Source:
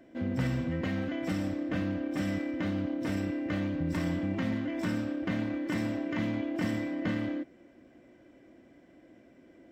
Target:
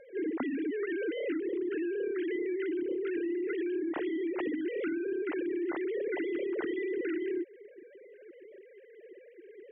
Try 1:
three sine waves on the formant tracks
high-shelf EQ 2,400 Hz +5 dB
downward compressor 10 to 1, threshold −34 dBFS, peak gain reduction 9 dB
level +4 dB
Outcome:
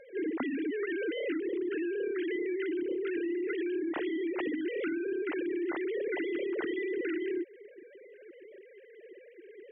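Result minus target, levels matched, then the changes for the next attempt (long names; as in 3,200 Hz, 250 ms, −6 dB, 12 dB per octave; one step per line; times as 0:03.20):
4,000 Hz band +4.0 dB
change: high-shelf EQ 2,400 Hz −2.5 dB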